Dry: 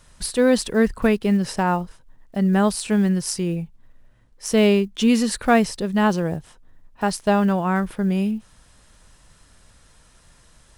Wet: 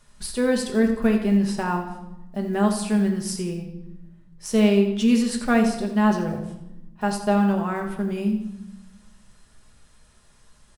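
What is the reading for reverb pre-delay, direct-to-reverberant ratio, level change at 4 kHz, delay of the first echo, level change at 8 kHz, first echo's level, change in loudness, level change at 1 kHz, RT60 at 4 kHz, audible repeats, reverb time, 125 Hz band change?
5 ms, 1.5 dB, -4.0 dB, 85 ms, -4.5 dB, -11.0 dB, -2.0 dB, -3.5 dB, 0.70 s, 2, 0.90 s, -3.0 dB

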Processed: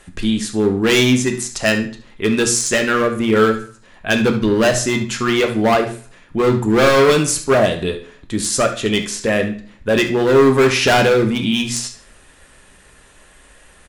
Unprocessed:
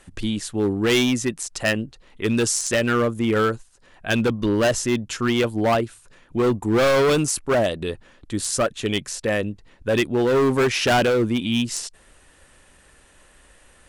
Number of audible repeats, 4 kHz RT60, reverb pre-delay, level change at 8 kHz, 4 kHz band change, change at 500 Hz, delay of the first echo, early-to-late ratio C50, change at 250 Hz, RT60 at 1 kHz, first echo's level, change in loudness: 2, 0.40 s, 3 ms, +5.5 dB, +5.5 dB, +5.5 dB, 72 ms, 9.0 dB, +5.0 dB, 0.45 s, -13.0 dB, +5.5 dB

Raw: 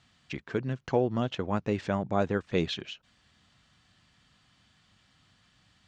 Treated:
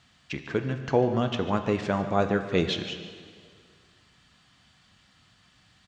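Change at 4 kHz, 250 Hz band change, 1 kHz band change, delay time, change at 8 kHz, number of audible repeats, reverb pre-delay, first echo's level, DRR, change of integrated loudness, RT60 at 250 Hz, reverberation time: +4.5 dB, +3.0 dB, +4.5 dB, 0.146 s, n/a, 1, 8 ms, -15.0 dB, 7.0 dB, +3.5 dB, 2.0 s, 2.1 s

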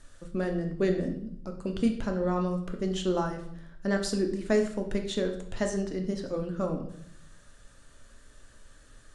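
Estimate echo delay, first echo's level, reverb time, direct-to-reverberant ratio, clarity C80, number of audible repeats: none, none, 0.70 s, 3.5 dB, 11.5 dB, none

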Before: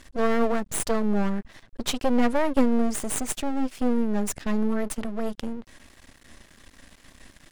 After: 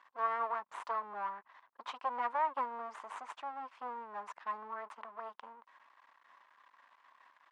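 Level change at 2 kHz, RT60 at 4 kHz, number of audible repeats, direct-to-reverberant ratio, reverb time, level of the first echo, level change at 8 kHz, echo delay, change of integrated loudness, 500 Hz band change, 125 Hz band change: -10.5 dB, none, none, none, none, none, under -30 dB, none, -13.0 dB, -18.5 dB, under -35 dB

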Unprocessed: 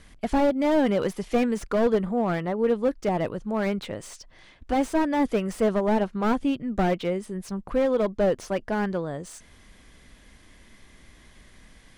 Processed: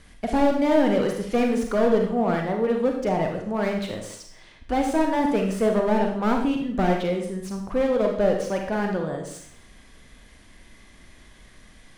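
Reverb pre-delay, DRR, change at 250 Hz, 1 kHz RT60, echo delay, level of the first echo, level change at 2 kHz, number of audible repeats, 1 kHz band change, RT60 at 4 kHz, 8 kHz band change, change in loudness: 34 ms, 2.0 dB, +2.0 dB, 0.65 s, none, none, +2.0 dB, none, +2.5 dB, 0.60 s, +2.0 dB, +2.0 dB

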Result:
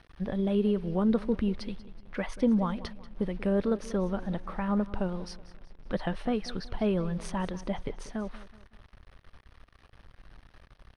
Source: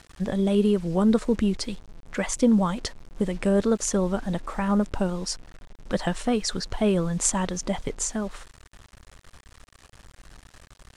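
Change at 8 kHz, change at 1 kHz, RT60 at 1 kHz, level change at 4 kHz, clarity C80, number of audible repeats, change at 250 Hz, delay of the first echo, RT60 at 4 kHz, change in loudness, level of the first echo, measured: -23.0 dB, -5.5 dB, none, -10.5 dB, none, 3, -5.0 dB, 0.187 s, none, -5.5 dB, -17.0 dB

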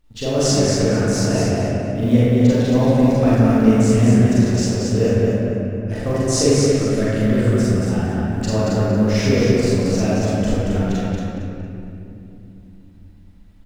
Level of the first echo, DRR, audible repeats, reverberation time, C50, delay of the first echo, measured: -2.5 dB, -10.5 dB, 1, 2.8 s, -7.0 dB, 0.229 s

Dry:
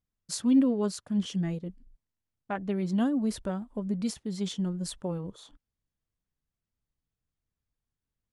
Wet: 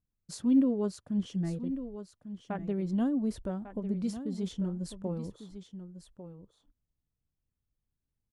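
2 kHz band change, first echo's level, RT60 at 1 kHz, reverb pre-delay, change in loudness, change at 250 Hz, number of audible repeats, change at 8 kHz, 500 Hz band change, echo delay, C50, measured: -7.5 dB, -11.5 dB, none, none, -2.5 dB, -2.0 dB, 1, -9.0 dB, -2.0 dB, 1.148 s, none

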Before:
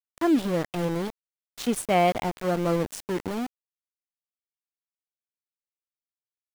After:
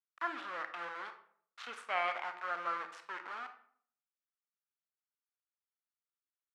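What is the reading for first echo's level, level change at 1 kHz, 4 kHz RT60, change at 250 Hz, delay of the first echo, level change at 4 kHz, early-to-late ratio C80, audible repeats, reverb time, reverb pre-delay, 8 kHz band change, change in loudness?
none, -8.5 dB, 0.35 s, -31.0 dB, none, -11.5 dB, 14.0 dB, none, 0.55 s, 27 ms, under -20 dB, -13.0 dB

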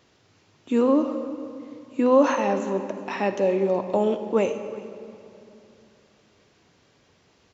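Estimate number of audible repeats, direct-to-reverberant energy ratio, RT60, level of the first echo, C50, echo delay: 1, 8.5 dB, 2.9 s, -21.0 dB, 9.0 dB, 0.373 s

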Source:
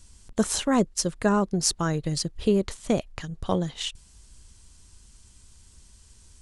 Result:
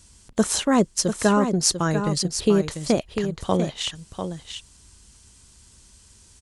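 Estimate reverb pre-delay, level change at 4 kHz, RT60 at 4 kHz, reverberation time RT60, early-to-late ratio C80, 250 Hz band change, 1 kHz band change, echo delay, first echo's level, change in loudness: none, +4.0 dB, none, none, none, +3.5 dB, +4.0 dB, 0.695 s, -8.0 dB, +3.5 dB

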